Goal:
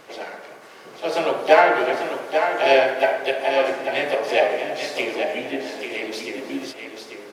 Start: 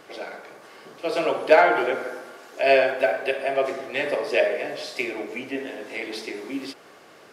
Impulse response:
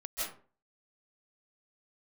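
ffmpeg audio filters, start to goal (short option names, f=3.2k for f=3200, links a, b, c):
-filter_complex "[0:a]asplit=2[a][b];[b]asetrate=55563,aresample=44100,atempo=0.793701,volume=-7dB[c];[a][c]amix=inputs=2:normalize=0,aecho=1:1:842:0.447,asplit=2[d][e];[1:a]atrim=start_sample=2205,adelay=143[f];[e][f]afir=irnorm=-1:irlink=0,volume=-19.5dB[g];[d][g]amix=inputs=2:normalize=0,volume=1dB"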